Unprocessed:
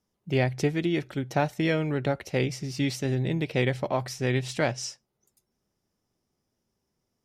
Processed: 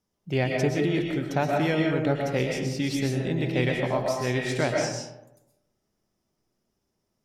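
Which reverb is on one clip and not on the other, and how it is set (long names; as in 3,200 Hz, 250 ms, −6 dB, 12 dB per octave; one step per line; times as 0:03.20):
comb and all-pass reverb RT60 0.9 s, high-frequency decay 0.45×, pre-delay 85 ms, DRR 0 dB
level −1 dB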